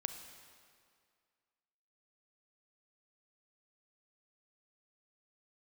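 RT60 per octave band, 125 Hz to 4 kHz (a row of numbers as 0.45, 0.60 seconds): 1.9, 2.1, 2.1, 2.1, 2.0, 1.8 seconds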